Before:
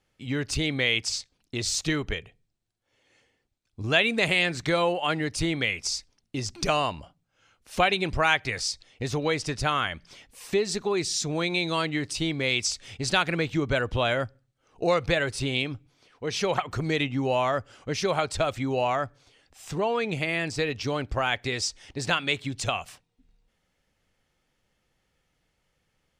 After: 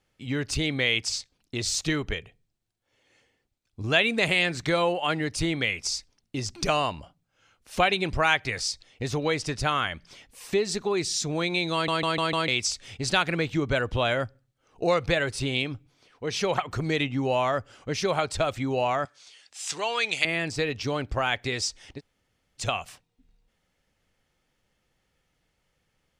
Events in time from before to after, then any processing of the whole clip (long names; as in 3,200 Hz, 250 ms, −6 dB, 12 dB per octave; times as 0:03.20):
0:11.73: stutter in place 0.15 s, 5 plays
0:19.05–0:20.25: meter weighting curve ITU-R 468
0:21.98–0:22.60: fill with room tone, crossfade 0.06 s